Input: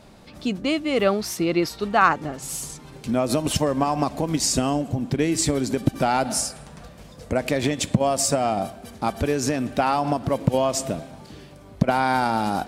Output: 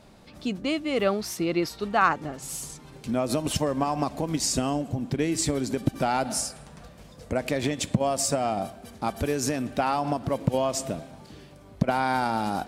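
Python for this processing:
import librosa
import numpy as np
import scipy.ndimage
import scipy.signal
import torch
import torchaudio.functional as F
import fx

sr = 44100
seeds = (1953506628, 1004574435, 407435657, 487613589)

y = fx.peak_eq(x, sr, hz=13000.0, db=6.0, octaves=1.3, at=(9.16, 9.62))
y = y * librosa.db_to_amplitude(-4.0)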